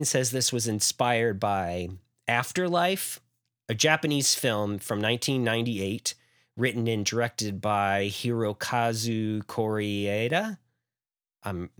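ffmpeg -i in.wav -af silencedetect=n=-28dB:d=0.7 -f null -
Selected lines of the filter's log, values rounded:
silence_start: 10.50
silence_end: 11.46 | silence_duration: 0.96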